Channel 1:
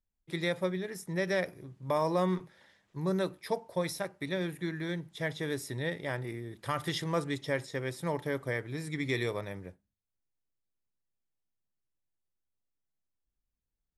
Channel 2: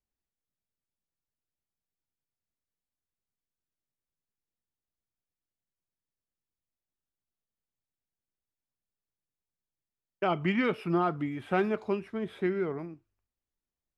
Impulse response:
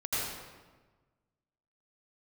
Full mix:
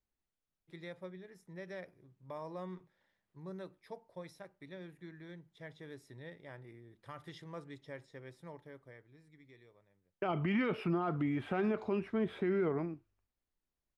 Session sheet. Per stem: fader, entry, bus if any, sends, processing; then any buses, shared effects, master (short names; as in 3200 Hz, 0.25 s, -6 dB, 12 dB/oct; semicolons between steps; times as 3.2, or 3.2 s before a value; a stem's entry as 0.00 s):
-15.0 dB, 0.40 s, no send, auto duck -21 dB, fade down 1.85 s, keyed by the second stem
+2.0 dB, 0.00 s, no send, dry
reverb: off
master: LPF 3100 Hz 6 dB/oct; limiter -25 dBFS, peak gain reduction 11 dB